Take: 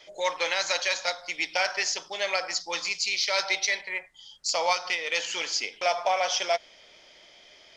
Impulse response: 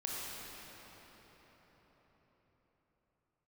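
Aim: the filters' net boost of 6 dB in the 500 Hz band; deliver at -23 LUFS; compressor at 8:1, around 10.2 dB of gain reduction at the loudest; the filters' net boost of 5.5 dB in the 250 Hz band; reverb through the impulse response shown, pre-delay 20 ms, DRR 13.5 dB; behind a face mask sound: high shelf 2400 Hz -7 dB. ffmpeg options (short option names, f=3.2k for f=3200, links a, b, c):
-filter_complex "[0:a]equalizer=f=250:t=o:g=4.5,equalizer=f=500:t=o:g=7,acompressor=threshold=-27dB:ratio=8,asplit=2[a][b];[1:a]atrim=start_sample=2205,adelay=20[c];[b][c]afir=irnorm=-1:irlink=0,volume=-16.5dB[d];[a][d]amix=inputs=2:normalize=0,highshelf=f=2.4k:g=-7,volume=10.5dB"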